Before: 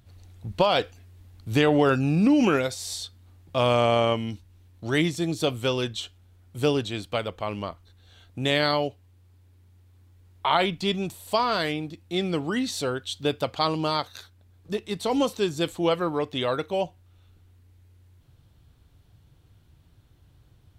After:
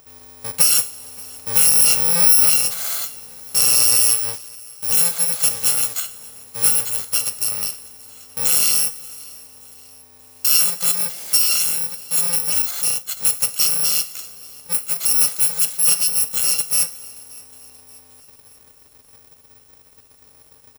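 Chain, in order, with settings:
samples in bit-reversed order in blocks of 128 samples
coupled-rooms reverb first 0.4 s, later 3.2 s, from −21 dB, DRR 10 dB
in parallel at +1.5 dB: downward compressor, threshold −33 dBFS, peak gain reduction 16 dB
0:04.33–0:05.98: on the sum: centre clipping without the shift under −32.5 dBFS
0:12.62–0:13.17: downward expander −23 dBFS
bass and treble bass −14 dB, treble +4 dB
repeating echo 579 ms, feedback 54%, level −23.5 dB
level +1 dB

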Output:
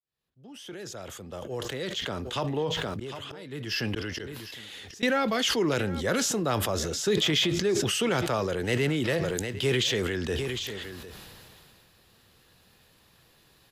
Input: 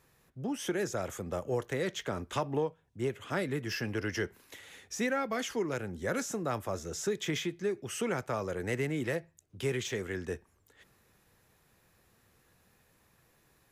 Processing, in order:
fade in at the beginning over 4.06 s
0:02.59–0:05.03: volume swells 595 ms
flat-topped bell 3,700 Hz +8.5 dB 1 octave
single-tap delay 757 ms −20.5 dB
level that may fall only so fast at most 21 dB per second
level +5 dB

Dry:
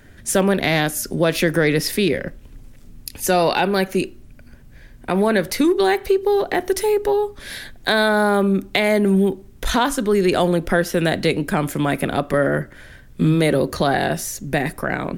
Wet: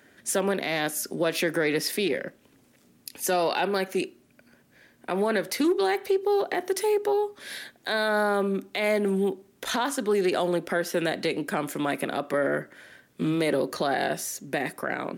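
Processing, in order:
high-pass filter 260 Hz 12 dB per octave
brickwall limiter −10.5 dBFS, peak gain reduction 8.5 dB
highs frequency-modulated by the lows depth 0.12 ms
level −5 dB

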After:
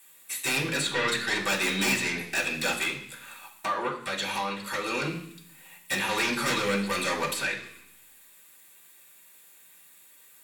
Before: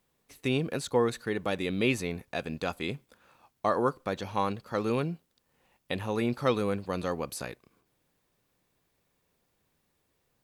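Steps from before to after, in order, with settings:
first-order pre-emphasis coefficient 0.97
treble cut that deepens with the level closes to 2,800 Hz, closed at −39.5 dBFS
parametric band 5,400 Hz −10.5 dB 0.67 octaves
0:02.83–0:05.02: downward compressor 10 to 1, threshold −51 dBFS, peak gain reduction 12.5 dB
sine wavefolder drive 19 dB, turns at −27.5 dBFS
convolution reverb RT60 0.65 s, pre-delay 3 ms, DRR −7 dB

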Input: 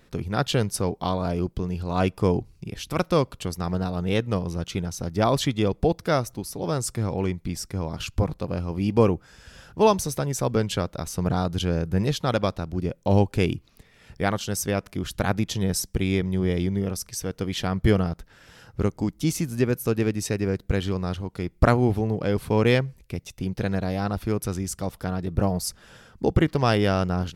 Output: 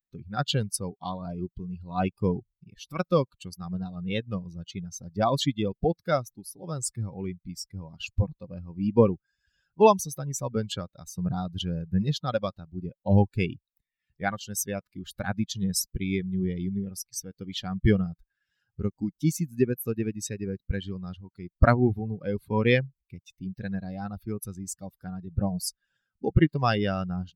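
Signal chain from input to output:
spectral dynamics exaggerated over time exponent 2
level +3 dB

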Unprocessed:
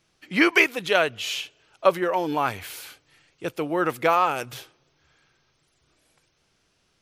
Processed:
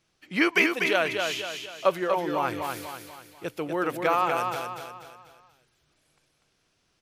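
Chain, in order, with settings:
repeating echo 244 ms, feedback 43%, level −5 dB
level −4 dB

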